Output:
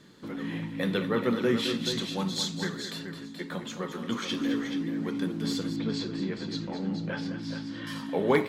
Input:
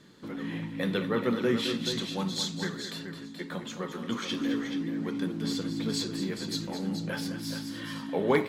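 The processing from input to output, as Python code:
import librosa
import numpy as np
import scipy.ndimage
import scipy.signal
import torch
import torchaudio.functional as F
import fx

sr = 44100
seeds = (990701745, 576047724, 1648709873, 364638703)

y = fx.air_absorb(x, sr, metres=150.0, at=(5.76, 7.87))
y = F.gain(torch.from_numpy(y), 1.0).numpy()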